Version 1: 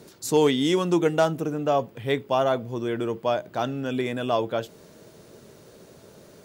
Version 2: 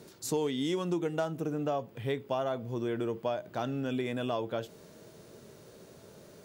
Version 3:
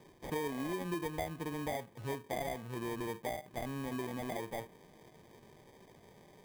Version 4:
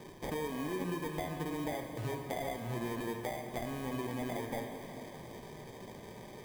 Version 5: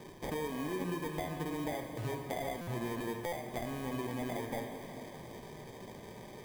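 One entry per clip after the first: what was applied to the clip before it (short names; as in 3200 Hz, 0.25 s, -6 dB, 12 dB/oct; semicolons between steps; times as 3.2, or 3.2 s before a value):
harmonic-percussive split harmonic +4 dB; compressor 4:1, threshold -23 dBFS, peak gain reduction 10 dB; gain -6 dB
sample-and-hold 32×; dynamic EQ 5200 Hz, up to -7 dB, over -54 dBFS, Q 1; gain -6 dB
compressor 4:1, threshold -46 dBFS, peak gain reduction 12 dB; on a send at -4 dB: reverb RT60 3.7 s, pre-delay 4 ms; on the sum: gain +8.5 dB
stuck buffer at 2.61/3.26, samples 256, times 10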